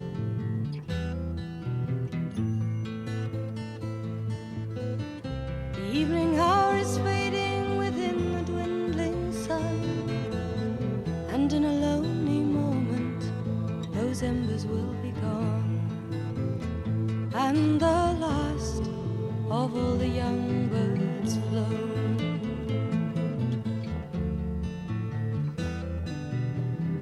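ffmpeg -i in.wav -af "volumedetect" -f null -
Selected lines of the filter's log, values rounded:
mean_volume: -28.2 dB
max_volume: -10.3 dB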